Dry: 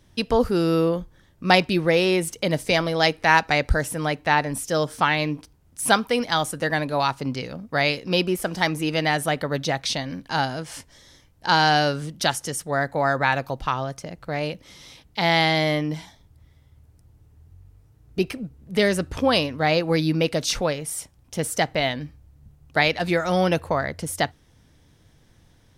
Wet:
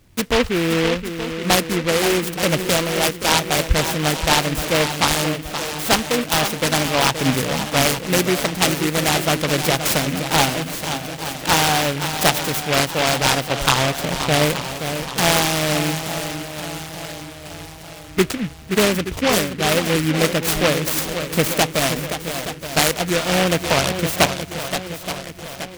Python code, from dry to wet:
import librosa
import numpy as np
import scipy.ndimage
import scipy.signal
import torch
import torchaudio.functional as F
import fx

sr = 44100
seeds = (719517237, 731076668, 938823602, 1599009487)

p1 = fx.rider(x, sr, range_db=10, speed_s=0.5)
p2 = p1 + fx.echo_swing(p1, sr, ms=874, ratio=1.5, feedback_pct=49, wet_db=-9, dry=0)
p3 = fx.noise_mod_delay(p2, sr, seeds[0], noise_hz=2000.0, depth_ms=0.17)
y = p3 * librosa.db_to_amplitude(3.0)